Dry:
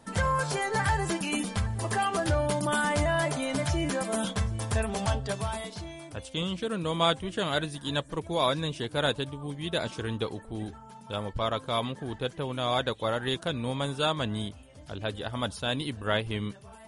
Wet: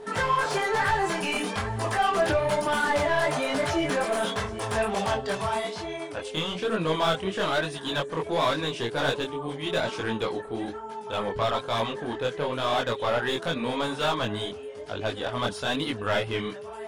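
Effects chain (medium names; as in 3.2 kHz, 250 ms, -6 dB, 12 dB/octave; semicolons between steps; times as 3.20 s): overdrive pedal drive 22 dB, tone 2.2 kHz, clips at -11.5 dBFS; whistle 420 Hz -33 dBFS; chorus voices 2, 1.1 Hz, delay 22 ms, depth 4.1 ms; trim -1 dB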